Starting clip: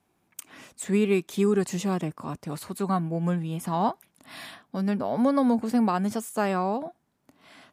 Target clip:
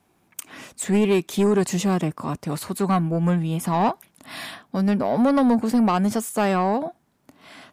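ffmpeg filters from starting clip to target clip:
ffmpeg -i in.wav -af "asoftclip=type=tanh:threshold=-20dB,volume=7dB" out.wav

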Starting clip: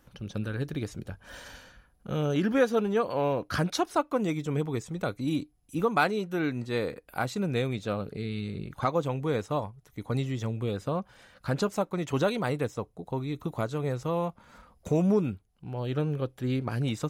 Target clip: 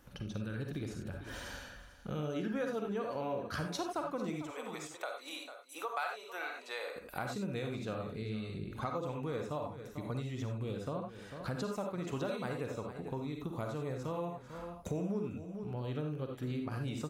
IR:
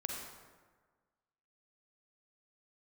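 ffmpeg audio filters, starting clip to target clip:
-filter_complex "[0:a]asettb=1/sr,asplit=3[link_01][link_02][link_03];[link_01]atrim=end=4.424[link_04];[link_02]atrim=start=4.42:end=6.96,asetpts=PTS-STARTPTS,afade=type=in:duration=0.004:curve=qsin,afade=type=out:start_time=2.536:duration=0.004:curve=qsin,highpass=frequency=600:width=0.5412,highpass=frequency=600:width=1.3066[link_05];[link_03]atrim=start=6.956[link_06];[link_04][link_05]acrossfade=duration=0.004:curve1=hsin:curve2=qsin[link_07];[link_07][link_06]acrossfade=duration=0.004:curve1=qsin:curve2=hsin,aecho=1:1:446:0.141[link_08];[1:a]atrim=start_sample=2205,atrim=end_sample=4410[link_09];[link_08][link_09]afir=irnorm=-1:irlink=0,acompressor=threshold=-42dB:ratio=2.5,volume=2dB"

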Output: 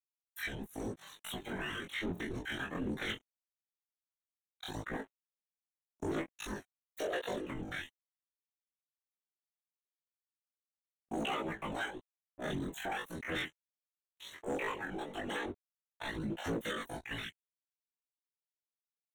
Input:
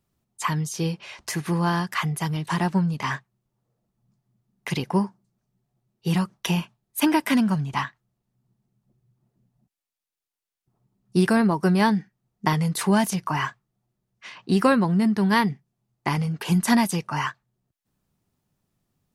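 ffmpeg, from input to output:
ffmpeg -i in.wav -af "agate=range=-33dB:threshold=-48dB:ratio=3:detection=peak,lowpass=frequency=10000:width=0.5412,lowpass=frequency=10000:width=1.3066,bass=frequency=250:gain=-4,treble=frequency=4000:gain=-11,aecho=1:1:7.1:0.55,acompressor=threshold=-35dB:ratio=3,afftfilt=real='hypot(re,im)*cos(2*PI*random(0))':imag='hypot(re,im)*sin(2*PI*random(1))':win_size=512:overlap=0.75,aeval=exprs='sgn(val(0))*max(abs(val(0))-0.00158,0)':channel_layout=same,aphaser=in_gain=1:out_gain=1:delay=2.4:decay=0.49:speed=0.97:type=sinusoidal,asetrate=80880,aresample=44100,atempo=0.545254,flanger=delay=18:depth=5.2:speed=0.18,asoftclip=type=hard:threshold=-35.5dB,asuperstop=centerf=4900:order=4:qfactor=2.3,volume=5dB" out.wav

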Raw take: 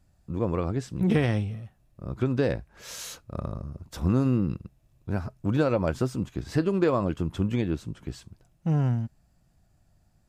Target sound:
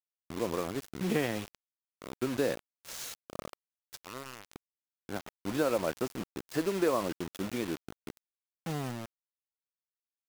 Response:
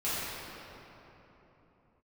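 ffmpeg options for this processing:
-af "asetnsamples=nb_out_samples=441:pad=0,asendcmd='3.48 highpass f 900;4.55 highpass f 280',highpass=250,acrusher=bits=5:mix=0:aa=0.000001,volume=-3.5dB"

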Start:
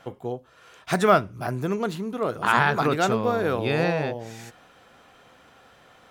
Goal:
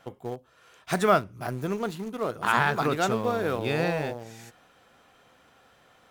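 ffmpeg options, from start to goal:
ffmpeg -i in.wav -filter_complex "[0:a]highshelf=frequency=8300:gain=4.5,asplit=2[link_01][link_02];[link_02]aeval=exprs='val(0)*gte(abs(val(0)),0.0501)':channel_layout=same,volume=-10dB[link_03];[link_01][link_03]amix=inputs=2:normalize=0,volume=-5.5dB" out.wav

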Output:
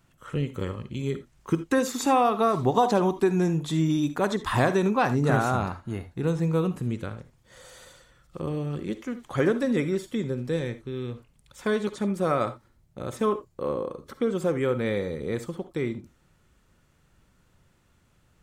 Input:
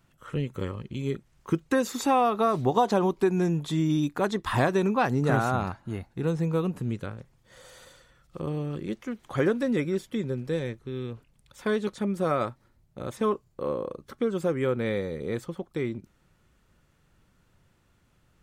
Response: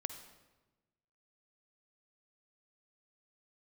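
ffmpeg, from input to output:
-filter_complex "[0:a]equalizer=frequency=7700:width_type=o:width=0.77:gain=2.5[link_01];[1:a]atrim=start_sample=2205,atrim=end_sample=3969[link_02];[link_01][link_02]afir=irnorm=-1:irlink=0,volume=2.5dB"

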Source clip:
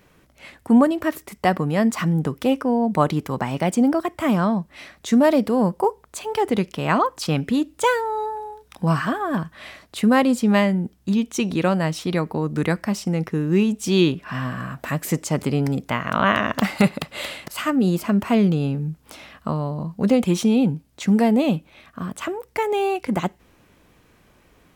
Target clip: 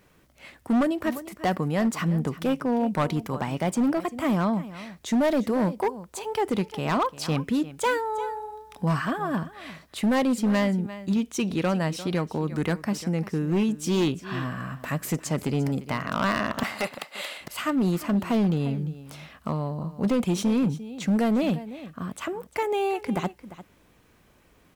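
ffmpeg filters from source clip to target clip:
ffmpeg -i in.wav -filter_complex "[0:a]asettb=1/sr,asplit=3[link_01][link_02][link_03];[link_01]atrim=end=16.634[link_04];[link_02]atrim=start=16.63:end=17.41,asetpts=PTS-STARTPTS,afade=type=in:duration=0.004:curve=qsin,afade=type=out:start_time=0.776:duration=0.004:curve=qsin,highpass=510[link_05];[link_03]atrim=start=17.406[link_06];[link_04][link_05]acrossfade=duration=0.004:curve1=hsin:curve2=qsin[link_07];[link_07][link_06]acrossfade=duration=0.004:curve1=qsin:curve2=hsin,asplit=2[link_08][link_09];[link_09]aecho=0:1:348:0.15[link_10];[link_08][link_10]amix=inputs=2:normalize=0,acrusher=bits=10:mix=0:aa=0.000001,asoftclip=type=hard:threshold=-14.5dB,volume=-4dB" out.wav

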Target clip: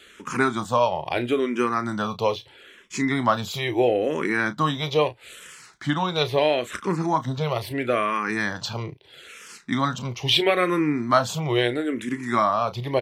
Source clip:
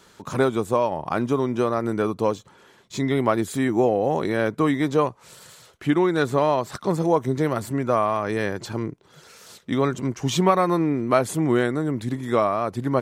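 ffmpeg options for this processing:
ffmpeg -i in.wav -filter_complex "[0:a]asettb=1/sr,asplit=3[link_01][link_02][link_03];[link_01]atrim=end=6.884[link_04];[link_02]atrim=start=6.88:end=7.57,asetpts=PTS-STARTPTS,afade=type=in:duration=0.004:curve=qsin,afade=type=out:start_time=0.686:duration=0.004:curve=qsin,acrossover=split=4100[link_05][link_06];[link_06]acompressor=threshold=-51dB:ratio=4:attack=1:release=60[link_07];[link_05][link_07]amix=inputs=2:normalize=0[link_08];[link_03]atrim=start=7.566[link_09];[link_04][link_08]acrossfade=duration=0.004:curve1=hsin:curve2=qsin[link_10];[link_10][link_09]acrossfade=duration=0.004:curve1=qsin:curve2=hsin,equalizer=frequency=2900:width_type=o:width=1.9:gain=12,asplit=2[link_11][link_12];[link_12]adelay=33,volume=-12dB[link_13];[link_11][link_13]amix=inputs=2:normalize=0,asplit=2[link_14][link_15];[link_15]afreqshift=-0.76[link_16];[link_14][link_16]amix=inputs=2:normalize=1" out.wav

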